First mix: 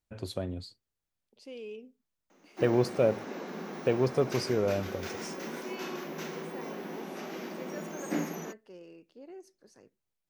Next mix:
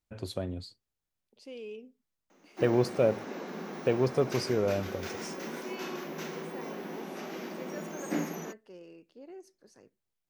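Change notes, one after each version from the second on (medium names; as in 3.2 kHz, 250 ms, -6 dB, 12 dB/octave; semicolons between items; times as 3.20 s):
no change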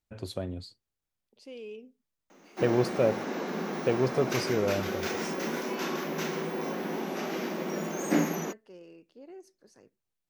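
background +6.5 dB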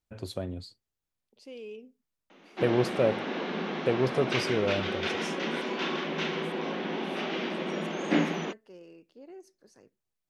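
background: add resonant low-pass 3.3 kHz, resonance Q 2.6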